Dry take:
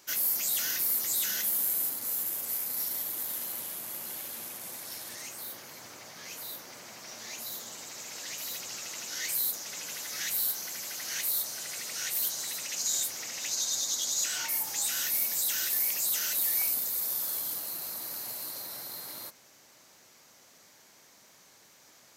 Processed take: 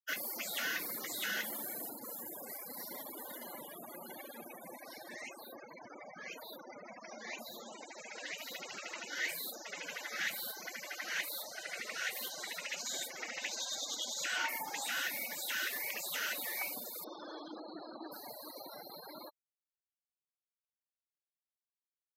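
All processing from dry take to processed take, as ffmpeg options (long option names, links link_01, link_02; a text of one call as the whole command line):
ffmpeg -i in.wav -filter_complex "[0:a]asettb=1/sr,asplit=3[link_01][link_02][link_03];[link_01]atrim=end=17.044[link_04];[link_02]atrim=start=17.04:end=18.12,asetpts=PTS-STARTPTS,afade=type=in:duration=0.004:curve=qsin,afade=type=out:start_time=1.076:duration=0.004:curve=qsin,acrusher=bits=6:mix=0:aa=0.5,asuperstop=centerf=2800:order=4:qfactor=7.7,highpass=170,equalizer=frequency=320:width_type=q:width=4:gain=8,equalizer=frequency=2200:width_type=q:width=4:gain=-4,equalizer=frequency=4600:width_type=q:width=4:gain=-3,lowpass=frequency=5500:width=0.5412,lowpass=frequency=5500:width=1.3066[link_05];[link_03]atrim=start=18.116[link_06];[link_04][link_05]acrossfade=duration=0.004:curve1=hsin:curve2=qsin[link_07];[link_07][link_06]acrossfade=duration=0.004:curve1=qsin:curve2=hsin,afftfilt=real='re*gte(hypot(re,im),0.00891)':imag='im*gte(hypot(re,im),0.00891)':win_size=1024:overlap=0.75,acrossover=split=160 3000:gain=0.0891 1 0.112[link_08][link_09][link_10];[link_08][link_09][link_10]amix=inputs=3:normalize=0,volume=5dB" out.wav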